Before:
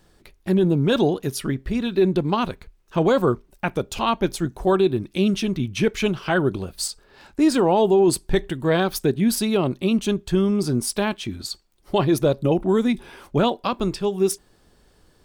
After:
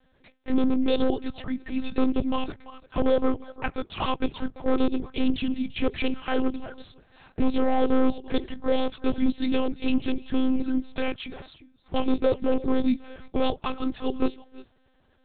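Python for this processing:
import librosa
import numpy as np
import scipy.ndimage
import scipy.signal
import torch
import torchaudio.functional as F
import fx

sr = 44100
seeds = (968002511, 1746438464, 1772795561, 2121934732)

y = fx.highpass(x, sr, hz=130.0, slope=6)
y = y + 10.0 ** (-18.0 / 20.0) * np.pad(y, (int(343 * sr / 1000.0), 0))[:len(y)]
y = fx.env_flanger(y, sr, rest_ms=5.6, full_db=-17.0)
y = fx.clip_asym(y, sr, top_db=-16.5, bottom_db=-15.5)
y = fx.lpc_monotone(y, sr, seeds[0], pitch_hz=260.0, order=8)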